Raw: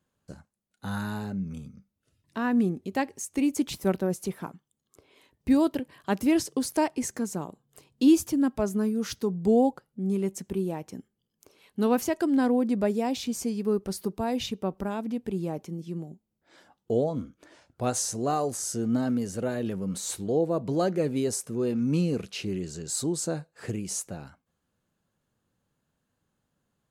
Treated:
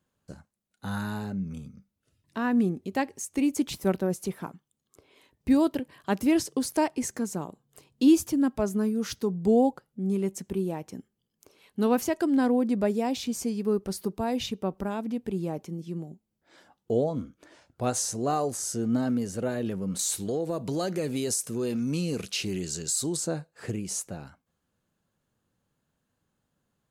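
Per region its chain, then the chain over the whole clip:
19.99–23.17 s: treble shelf 2.5 kHz +11.5 dB + compression 4:1, threshold -25 dBFS
whole clip: none

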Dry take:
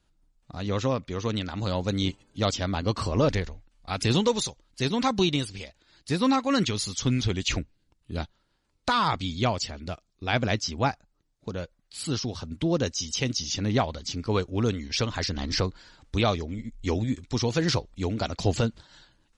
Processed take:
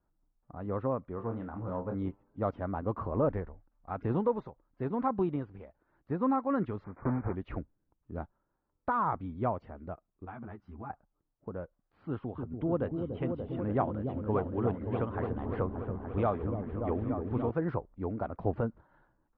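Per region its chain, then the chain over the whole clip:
1.15–1.95 s: treble shelf 5.7 kHz -9.5 dB + flutter echo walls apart 4.5 m, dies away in 0.21 s + transformer saturation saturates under 420 Hz
6.84–7.36 s: block-companded coder 3-bit + brick-wall FIR low-pass 2.5 kHz
10.25–10.90 s: peaking EQ 530 Hz -14.5 dB 0.41 oct + compression 10:1, threshold -27 dBFS + three-phase chorus
12.09–17.51 s: resonant high shelf 4.8 kHz -13.5 dB, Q 3 + delay with an opening low-pass 290 ms, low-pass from 400 Hz, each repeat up 1 oct, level -3 dB
whole clip: low-pass 1.3 kHz 24 dB/octave; bass shelf 230 Hz -6 dB; trim -3.5 dB

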